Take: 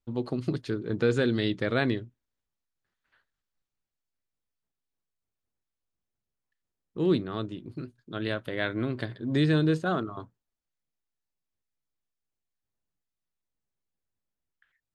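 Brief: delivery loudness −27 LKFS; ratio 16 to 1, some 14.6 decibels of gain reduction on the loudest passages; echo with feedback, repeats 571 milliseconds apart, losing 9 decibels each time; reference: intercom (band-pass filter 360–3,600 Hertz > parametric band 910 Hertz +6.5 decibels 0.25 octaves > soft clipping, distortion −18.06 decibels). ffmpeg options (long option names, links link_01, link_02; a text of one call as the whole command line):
ffmpeg -i in.wav -af "acompressor=threshold=-34dB:ratio=16,highpass=360,lowpass=3600,equalizer=frequency=910:width_type=o:width=0.25:gain=6.5,aecho=1:1:571|1142|1713|2284:0.355|0.124|0.0435|0.0152,asoftclip=threshold=-31.5dB,volume=18dB" out.wav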